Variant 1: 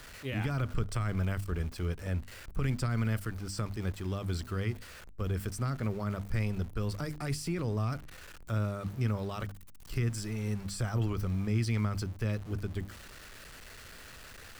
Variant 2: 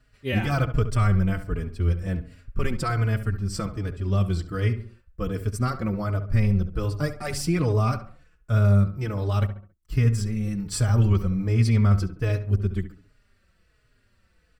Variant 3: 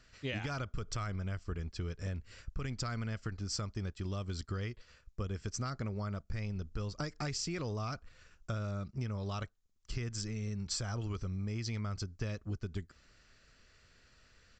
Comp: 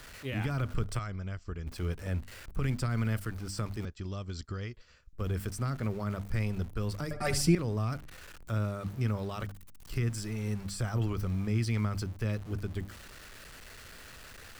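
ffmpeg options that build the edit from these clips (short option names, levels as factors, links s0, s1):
-filter_complex "[2:a]asplit=2[s0][s1];[0:a]asplit=4[s2][s3][s4][s5];[s2]atrim=end=0.992[s6];[s0]atrim=start=0.988:end=1.672[s7];[s3]atrim=start=1.668:end=3.852[s8];[s1]atrim=start=3.848:end=5.132[s9];[s4]atrim=start=5.128:end=7.112[s10];[1:a]atrim=start=7.108:end=7.552[s11];[s5]atrim=start=7.548[s12];[s6][s7]acrossfade=d=0.004:c1=hsin:c2=hsin[s13];[s13][s8]acrossfade=d=0.004:c1=hsin:c2=hsin[s14];[s14][s9]acrossfade=d=0.004:c1=hsin:c2=hsin[s15];[s15][s10]acrossfade=d=0.004:c1=hsin:c2=hsin[s16];[s16][s11]acrossfade=d=0.004:c1=hsin:c2=hsin[s17];[s17][s12]acrossfade=d=0.004:c1=hsin:c2=hsin"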